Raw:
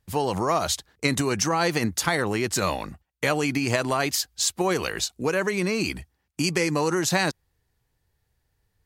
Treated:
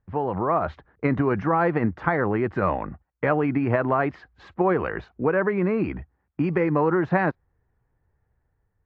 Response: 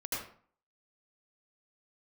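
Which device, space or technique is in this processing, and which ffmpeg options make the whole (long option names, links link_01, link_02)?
action camera in a waterproof case: -af "lowpass=frequency=1700:width=0.5412,lowpass=frequency=1700:width=1.3066,dynaudnorm=framelen=160:gausssize=7:maxgain=4dB,volume=-1dB" -ar 24000 -c:a aac -b:a 96k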